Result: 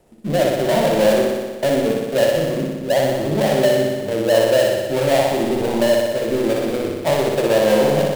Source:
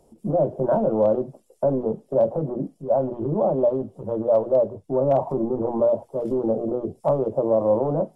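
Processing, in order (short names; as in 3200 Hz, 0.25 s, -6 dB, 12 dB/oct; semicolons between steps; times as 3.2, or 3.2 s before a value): switching dead time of 0.21 ms; flutter echo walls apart 10.4 m, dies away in 1.4 s; gain +2 dB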